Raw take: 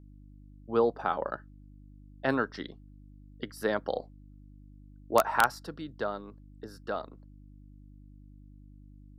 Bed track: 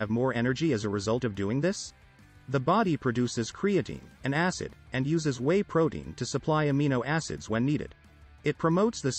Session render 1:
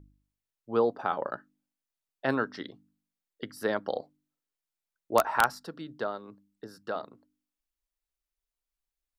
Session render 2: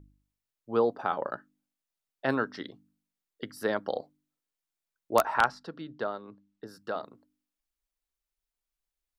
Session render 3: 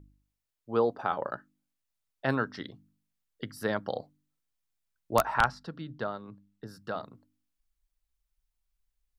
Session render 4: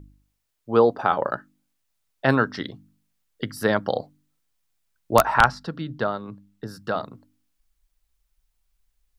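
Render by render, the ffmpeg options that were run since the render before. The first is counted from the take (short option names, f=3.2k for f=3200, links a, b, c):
-af "bandreject=f=50:t=h:w=4,bandreject=f=100:t=h:w=4,bandreject=f=150:t=h:w=4,bandreject=f=200:t=h:w=4,bandreject=f=250:t=h:w=4,bandreject=f=300:t=h:w=4"
-filter_complex "[0:a]asettb=1/sr,asplit=3[a][b][c];[a]atrim=end=5.344[d];[b]atrim=start=5.34:end=6.67,asetpts=PTS-STARTPTS,afade=t=in:d=0.004:c=qsin,afade=t=out:st=1.326:d=0.004:c=qsin,lowpass=4.7k[e];[c]atrim=start=6.666[f];[d][e]acrossfade=d=0.004:c1=hsin:c2=qsin[g];[g][f]acrossfade=d=0.004:c1=qsin:c2=hsin"
-af "asubboost=boost=4.5:cutoff=160"
-af "volume=9dB,alimiter=limit=-2dB:level=0:latency=1"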